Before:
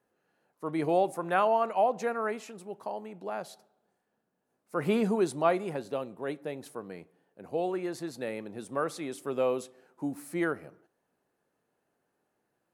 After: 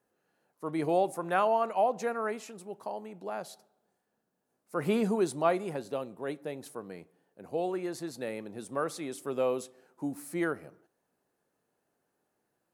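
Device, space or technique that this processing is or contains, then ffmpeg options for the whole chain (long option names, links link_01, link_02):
exciter from parts: -filter_complex "[0:a]asplit=2[link_01][link_02];[link_02]highpass=3600,asoftclip=type=tanh:threshold=-39.5dB,volume=-6dB[link_03];[link_01][link_03]amix=inputs=2:normalize=0,volume=-1dB"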